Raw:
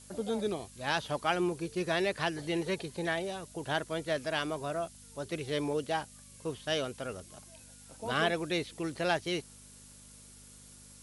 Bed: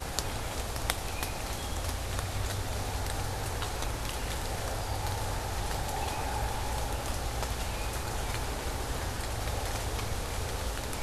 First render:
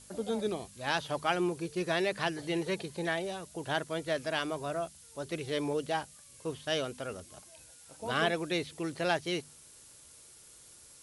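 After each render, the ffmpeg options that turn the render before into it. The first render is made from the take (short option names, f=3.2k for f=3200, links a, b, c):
-af "bandreject=f=50:t=h:w=4,bandreject=f=100:t=h:w=4,bandreject=f=150:t=h:w=4,bandreject=f=200:t=h:w=4,bandreject=f=250:t=h:w=4"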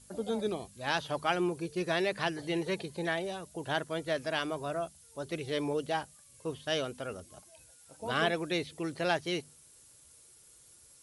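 -af "afftdn=nr=6:nf=-56"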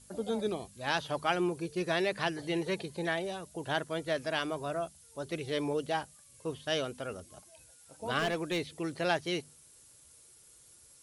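-filter_complex "[0:a]asettb=1/sr,asplit=3[a][b][c];[a]atrim=end=8.194[d];[b]atrim=start=8.19:end=8.78,asetpts=PTS-STARTPTS,afade=t=in:d=0.004:c=qsin,afade=t=out:st=0.586:d=0.004:c=qsin,volume=27dB,asoftclip=hard,volume=-27dB[e];[c]atrim=start=8.776[f];[d][e]acrossfade=d=0.004:c1=hsin:c2=qsin[g];[g][f]acrossfade=d=0.004:c1=qsin:c2=hsin"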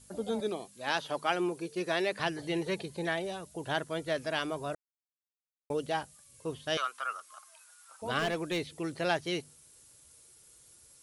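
-filter_complex "[0:a]asettb=1/sr,asplit=3[a][b][c];[a]atrim=end=0.404[d];[b]atrim=start=0.4:end=2.2,asetpts=PTS-STARTPTS,afade=t=in:d=0.004:c=qsin,afade=t=out:st=1.796:d=0.004:c=qsin,highpass=210[e];[c]atrim=start=2.196[f];[d][e]acrossfade=d=0.004:c1=hsin:c2=qsin[g];[g][f]acrossfade=d=0.004:c1=qsin:c2=hsin,asettb=1/sr,asplit=3[h][i][j];[h]atrim=end=6.774[k];[i]atrim=start=6.77:end=8.02,asetpts=PTS-STARTPTS,afade=t=in:d=0.004:c=qsin,afade=t=out:st=1.246:d=0.004:c=qsin,highpass=f=1.2k:t=q:w=6.6[l];[j]atrim=start=8.016[m];[k][l]acrossfade=d=0.004:c1=hsin:c2=qsin[n];[n][m]acrossfade=d=0.004:c1=qsin:c2=hsin,asplit=3[o][p][q];[o]atrim=end=4.75,asetpts=PTS-STARTPTS,afade=t=out:st=4.746:d=0.004:c=hsin[r];[p]atrim=start=4.75:end=5.7,asetpts=PTS-STARTPTS,volume=0[s];[q]atrim=start=5.7,asetpts=PTS-STARTPTS,afade=t=in:d=0.004:c=hsin[t];[r][s][t]concat=n=3:v=0:a=1"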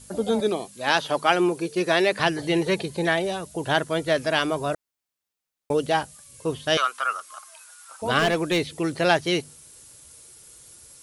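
-af "volume=10dB"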